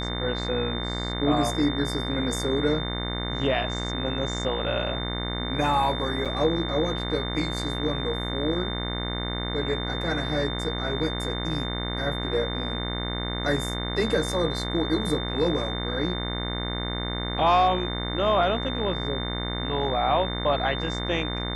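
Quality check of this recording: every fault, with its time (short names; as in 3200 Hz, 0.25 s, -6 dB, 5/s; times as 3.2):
buzz 60 Hz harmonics 37 -31 dBFS
tone 3600 Hz -33 dBFS
6.25–6.26 gap 6.5 ms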